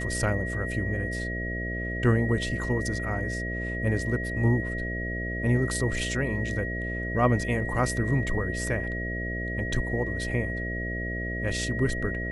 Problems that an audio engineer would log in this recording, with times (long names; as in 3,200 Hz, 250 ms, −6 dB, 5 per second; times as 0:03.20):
mains buzz 60 Hz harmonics 11 −33 dBFS
whistle 1,900 Hz −33 dBFS